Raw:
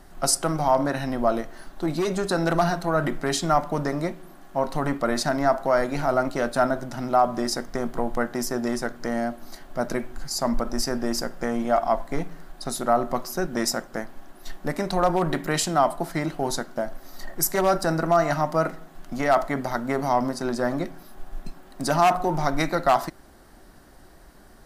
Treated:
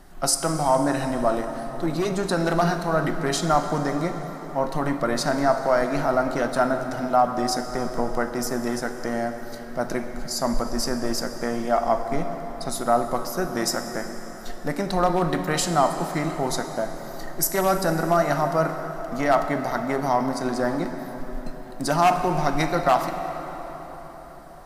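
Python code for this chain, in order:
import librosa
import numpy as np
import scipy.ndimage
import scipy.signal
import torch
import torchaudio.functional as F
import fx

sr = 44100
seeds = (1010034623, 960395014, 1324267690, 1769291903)

y = fx.rev_plate(x, sr, seeds[0], rt60_s=5.0, hf_ratio=0.6, predelay_ms=0, drr_db=6.5)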